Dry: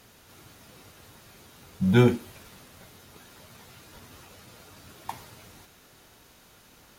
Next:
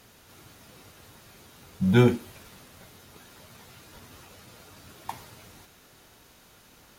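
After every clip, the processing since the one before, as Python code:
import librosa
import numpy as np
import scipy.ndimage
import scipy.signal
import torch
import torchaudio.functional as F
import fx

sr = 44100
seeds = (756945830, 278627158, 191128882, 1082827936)

y = x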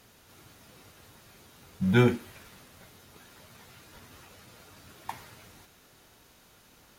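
y = fx.dynamic_eq(x, sr, hz=1800.0, q=1.2, threshold_db=-56.0, ratio=4.0, max_db=5)
y = y * librosa.db_to_amplitude(-3.0)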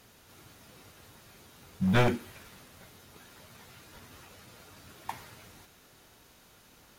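y = np.minimum(x, 2.0 * 10.0 ** (-21.5 / 20.0) - x)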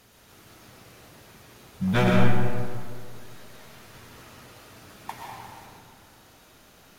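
y = fx.rev_freeverb(x, sr, rt60_s=2.0, hf_ratio=0.45, predelay_ms=80, drr_db=-2.0)
y = y * librosa.db_to_amplitude(1.0)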